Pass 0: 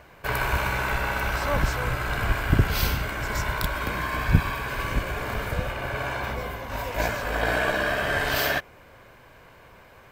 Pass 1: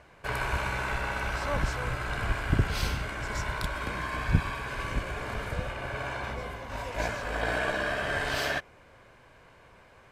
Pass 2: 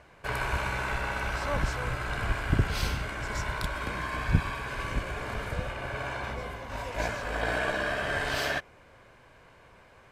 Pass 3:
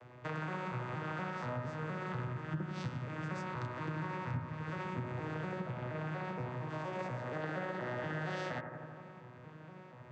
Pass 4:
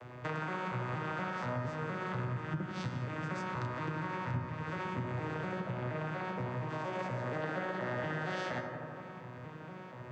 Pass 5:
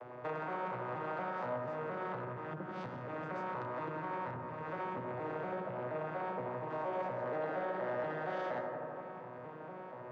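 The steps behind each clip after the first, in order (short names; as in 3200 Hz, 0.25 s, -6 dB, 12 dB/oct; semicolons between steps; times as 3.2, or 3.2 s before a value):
LPF 11000 Hz 24 dB/oct; gain -5 dB
nothing audible
arpeggiated vocoder major triad, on B2, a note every 0.236 s; compressor 5:1, threshold -42 dBFS, peak gain reduction 21 dB; analogue delay 84 ms, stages 1024, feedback 78%, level -7.5 dB; gain +4 dB
in parallel at +0.5 dB: compressor, threshold -47 dBFS, peak gain reduction 14 dB; on the sum: non-linear reverb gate 0.23 s flat, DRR 11 dB
soft clip -32.5 dBFS, distortion -15 dB; band-pass 640 Hz, Q 1; gain +5 dB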